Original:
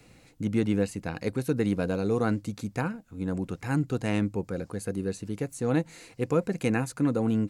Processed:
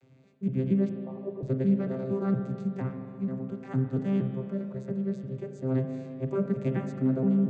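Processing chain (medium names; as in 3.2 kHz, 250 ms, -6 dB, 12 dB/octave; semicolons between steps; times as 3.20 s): vocoder on a broken chord bare fifth, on C3, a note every 233 ms; 0.89–1.43 s: brick-wall FIR band-pass 280–1200 Hz; 6.35–7.08 s: short-mantissa float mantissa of 8-bit; spring tank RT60 2.6 s, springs 35/42 ms, chirp 45 ms, DRR 4.5 dB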